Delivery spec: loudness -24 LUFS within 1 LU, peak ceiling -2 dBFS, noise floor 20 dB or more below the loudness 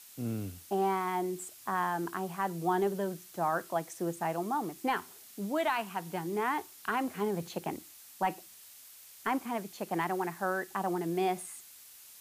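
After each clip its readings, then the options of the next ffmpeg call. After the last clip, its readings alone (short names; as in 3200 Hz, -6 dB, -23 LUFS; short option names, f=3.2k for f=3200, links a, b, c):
noise floor -53 dBFS; noise floor target -54 dBFS; loudness -34.0 LUFS; peak -20.0 dBFS; loudness target -24.0 LUFS
-> -af "afftdn=nr=6:nf=-53"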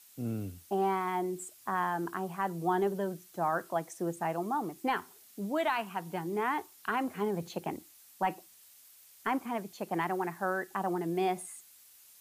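noise floor -58 dBFS; loudness -34.0 LUFS; peak -20.0 dBFS; loudness target -24.0 LUFS
-> -af "volume=10dB"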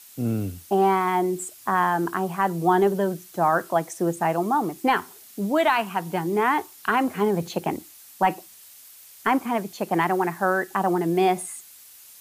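loudness -24.0 LUFS; peak -10.0 dBFS; noise floor -48 dBFS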